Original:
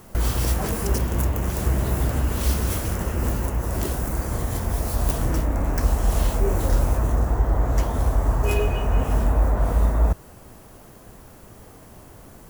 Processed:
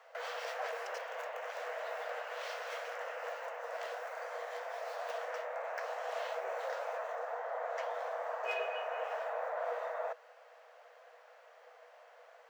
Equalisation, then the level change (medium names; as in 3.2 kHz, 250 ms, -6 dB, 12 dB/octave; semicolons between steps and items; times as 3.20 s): rippled Chebyshev high-pass 470 Hz, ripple 6 dB; distance through air 200 m; treble shelf 11 kHz +7.5 dB; -2.5 dB